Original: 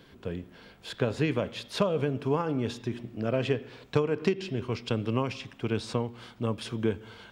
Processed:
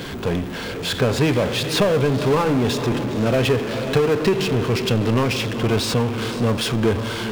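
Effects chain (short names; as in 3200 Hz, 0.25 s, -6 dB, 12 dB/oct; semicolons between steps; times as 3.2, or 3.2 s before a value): diffused feedback echo 0.5 s, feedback 41%, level -15 dB; power-law curve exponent 0.5; gain +3 dB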